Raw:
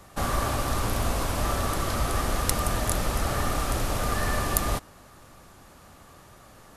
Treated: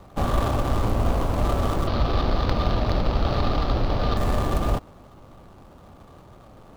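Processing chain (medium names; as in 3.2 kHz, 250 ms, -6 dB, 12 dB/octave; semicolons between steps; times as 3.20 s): median filter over 25 samples; 1.87–4.17 s: resonant high shelf 6.1 kHz -12 dB, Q 3; trim +5.5 dB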